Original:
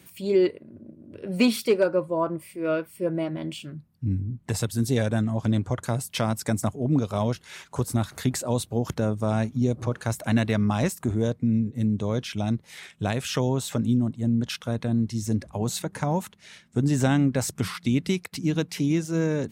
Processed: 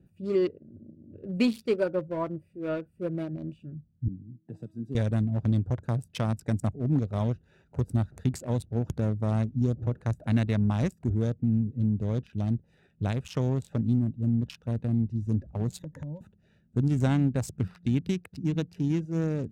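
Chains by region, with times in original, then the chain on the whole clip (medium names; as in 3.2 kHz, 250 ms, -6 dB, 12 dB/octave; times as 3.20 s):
4.08–4.95 s: high-pass 150 Hz 24 dB/octave + bass shelf 500 Hz +5 dB + feedback comb 320 Hz, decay 0.71 s, mix 70%
15.79–16.21 s: rippled EQ curve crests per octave 1.1, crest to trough 16 dB + compression 8:1, threshold -31 dBFS
whole clip: local Wiener filter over 41 samples; bass shelf 120 Hz +11 dB; trim -5.5 dB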